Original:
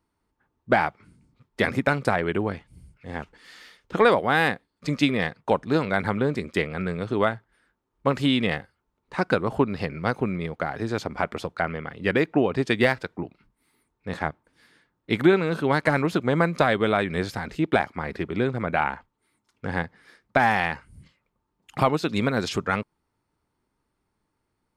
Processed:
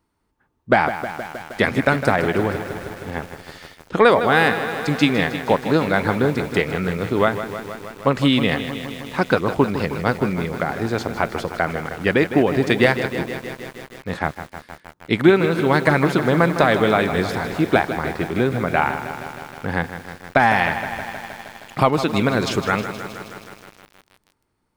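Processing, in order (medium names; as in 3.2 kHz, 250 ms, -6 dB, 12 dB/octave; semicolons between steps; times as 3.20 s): bit-crushed delay 157 ms, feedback 80%, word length 7-bit, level -10.5 dB; trim +4.5 dB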